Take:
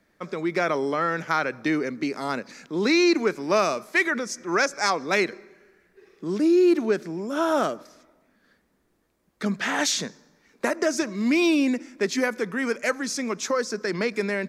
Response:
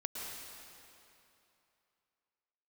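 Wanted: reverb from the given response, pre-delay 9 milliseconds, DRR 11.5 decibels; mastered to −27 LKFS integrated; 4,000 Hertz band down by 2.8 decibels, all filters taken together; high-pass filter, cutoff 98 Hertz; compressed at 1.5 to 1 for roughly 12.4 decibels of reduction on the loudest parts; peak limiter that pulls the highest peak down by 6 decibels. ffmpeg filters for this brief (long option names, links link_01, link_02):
-filter_complex "[0:a]highpass=98,equalizer=frequency=4000:width_type=o:gain=-3.5,acompressor=threshold=-52dB:ratio=1.5,alimiter=level_in=3dB:limit=-24dB:level=0:latency=1,volume=-3dB,asplit=2[link_01][link_02];[1:a]atrim=start_sample=2205,adelay=9[link_03];[link_02][link_03]afir=irnorm=-1:irlink=0,volume=-12.5dB[link_04];[link_01][link_04]amix=inputs=2:normalize=0,volume=10dB"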